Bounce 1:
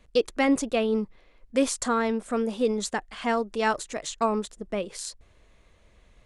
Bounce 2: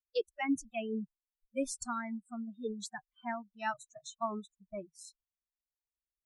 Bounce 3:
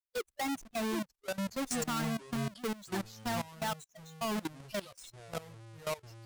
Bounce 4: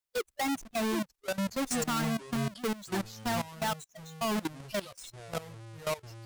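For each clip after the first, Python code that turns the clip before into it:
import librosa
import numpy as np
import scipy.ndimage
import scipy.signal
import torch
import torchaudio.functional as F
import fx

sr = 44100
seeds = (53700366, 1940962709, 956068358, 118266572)

y1 = fx.bin_expand(x, sr, power=2.0)
y1 = fx.noise_reduce_blind(y1, sr, reduce_db=28)
y1 = y1 * librosa.db_to_amplitude(-7.5)
y2 = fx.halfwave_hold(y1, sr)
y2 = fx.echo_pitch(y2, sr, ms=698, semitones=-6, count=2, db_per_echo=-6.0)
y2 = fx.level_steps(y2, sr, step_db=18)
y2 = y2 * librosa.db_to_amplitude(3.0)
y3 = 10.0 ** (-27.0 / 20.0) * np.tanh(y2 / 10.0 ** (-27.0 / 20.0))
y3 = y3 * librosa.db_to_amplitude(4.5)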